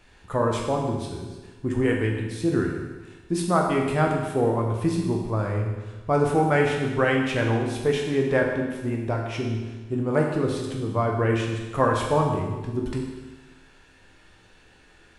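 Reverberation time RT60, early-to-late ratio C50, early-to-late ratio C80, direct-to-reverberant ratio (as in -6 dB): 1.3 s, 3.5 dB, 5.0 dB, -0.5 dB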